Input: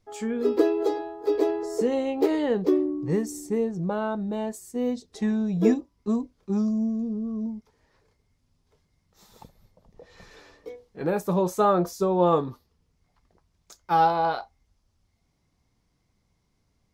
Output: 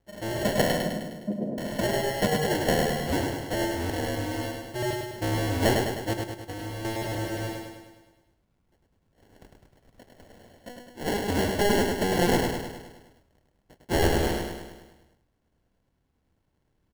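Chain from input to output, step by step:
sub-harmonics by changed cycles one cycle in 2, inverted
decimation without filtering 36×
0:00.77–0:01.58: flat-topped band-pass 260 Hz, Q 0.94
0:06.13–0:06.85: downward compressor 6 to 1, threshold −32 dBFS, peak gain reduction 10 dB
repeating echo 103 ms, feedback 57%, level −4 dB
level −3.5 dB

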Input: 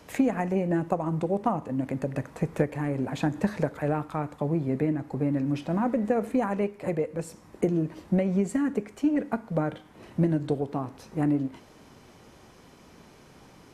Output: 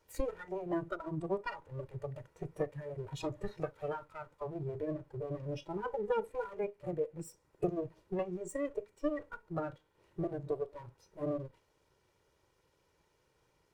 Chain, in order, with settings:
lower of the sound and its delayed copy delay 2.1 ms
noise reduction from a noise print of the clip's start 15 dB
level −4 dB

